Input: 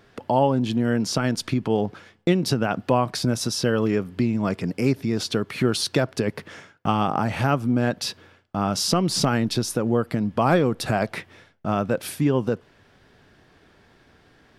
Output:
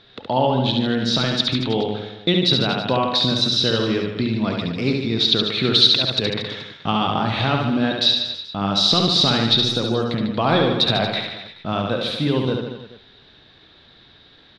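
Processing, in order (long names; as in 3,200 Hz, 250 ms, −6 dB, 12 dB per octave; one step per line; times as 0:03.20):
0:05.91–0:06.54: compressor whose output falls as the input rises −23 dBFS, ratio −0.5
low-pass with resonance 3,800 Hz, resonance Q 13
reverse bouncing-ball delay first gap 70 ms, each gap 1.1×, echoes 5
on a send at −14.5 dB: convolution reverb, pre-delay 46 ms
on the sum: level −1 dB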